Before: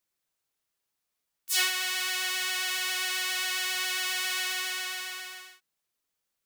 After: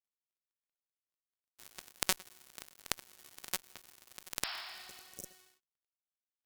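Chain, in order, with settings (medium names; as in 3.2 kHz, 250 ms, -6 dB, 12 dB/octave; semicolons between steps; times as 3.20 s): dead-time distortion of 0.25 ms; Chebyshev shaper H 2 -13 dB, 6 -22 dB, 7 -23 dB, 8 -27 dB, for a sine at -17 dBFS; spectral replace 4.46–5.31 s, 610–5500 Hz both; trim +11 dB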